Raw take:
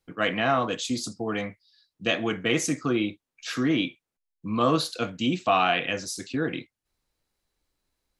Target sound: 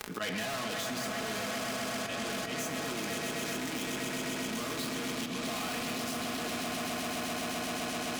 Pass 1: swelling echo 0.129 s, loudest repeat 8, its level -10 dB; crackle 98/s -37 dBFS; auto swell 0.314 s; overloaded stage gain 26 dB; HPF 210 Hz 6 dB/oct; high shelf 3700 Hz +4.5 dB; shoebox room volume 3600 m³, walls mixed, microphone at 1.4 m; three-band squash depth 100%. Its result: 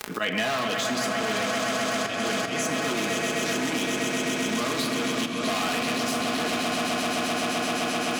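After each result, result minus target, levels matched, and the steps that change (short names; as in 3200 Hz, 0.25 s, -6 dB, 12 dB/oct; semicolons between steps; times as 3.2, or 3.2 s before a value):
overloaded stage: distortion -4 dB; 125 Hz band -2.5 dB
change: overloaded stage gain 37.5 dB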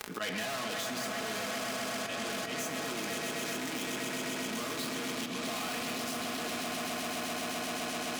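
125 Hz band -3.0 dB
change: HPF 79 Hz 6 dB/oct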